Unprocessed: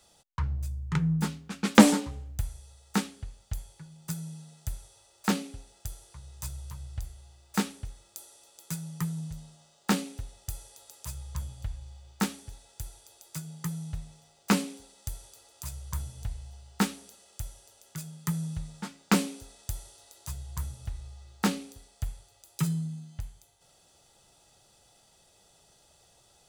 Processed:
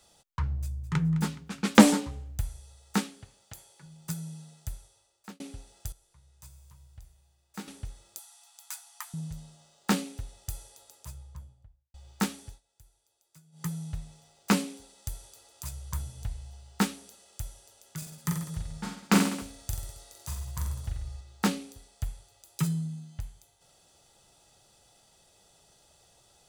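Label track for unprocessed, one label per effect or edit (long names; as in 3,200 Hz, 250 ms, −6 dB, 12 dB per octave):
0.590000	1.010000	delay throw 210 ms, feedback 55%, level −15.5 dB
2.990000	3.820000	high-pass filter 110 Hz → 310 Hz
4.450000	5.400000	fade out
5.920000	7.680000	tuned comb filter 160 Hz, decay 1.6 s, mix 80%
8.190000	9.140000	linear-phase brick-wall high-pass 660 Hz
10.540000	11.940000	fade out and dull
12.470000	13.660000	duck −19 dB, fades 0.14 s
17.980000	21.210000	reverse bouncing-ball delay first gap 40 ms, each gap 1.15×, echoes 5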